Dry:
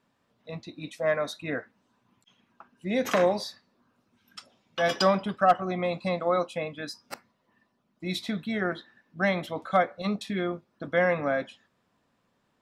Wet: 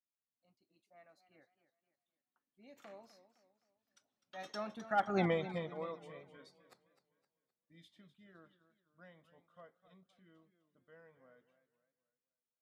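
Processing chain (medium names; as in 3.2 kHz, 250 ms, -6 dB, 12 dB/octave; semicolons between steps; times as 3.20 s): Doppler pass-by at 5.22 s, 32 m/s, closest 2.2 m; modulated delay 257 ms, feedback 40%, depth 123 cents, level -13.5 dB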